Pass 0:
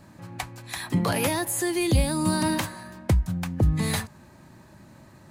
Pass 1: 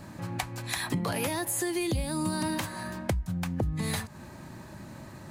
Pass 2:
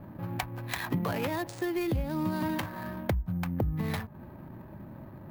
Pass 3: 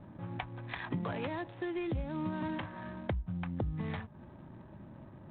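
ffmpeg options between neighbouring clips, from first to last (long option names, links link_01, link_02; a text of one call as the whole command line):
ffmpeg -i in.wav -af "acompressor=threshold=-34dB:ratio=5,volume=5.5dB" out.wav
ffmpeg -i in.wav -af "adynamicsmooth=sensitivity=6:basefreq=820,acrusher=samples=3:mix=1:aa=0.000001" out.wav
ffmpeg -i in.wav -af "volume=-5.5dB" -ar 8000 -c:a adpcm_ima_wav out.wav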